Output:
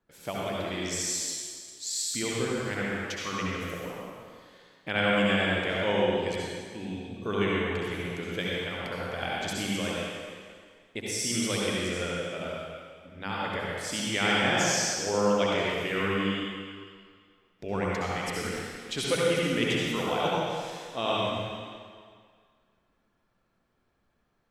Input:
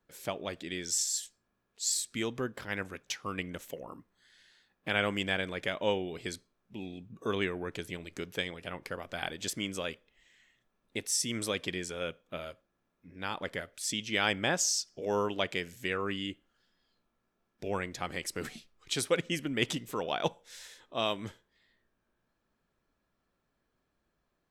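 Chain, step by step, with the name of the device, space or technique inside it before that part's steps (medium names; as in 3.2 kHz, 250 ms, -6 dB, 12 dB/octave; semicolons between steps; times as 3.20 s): swimming-pool hall (reverberation RT60 2.0 s, pre-delay 61 ms, DRR -5.5 dB; treble shelf 5.1 kHz -7 dB)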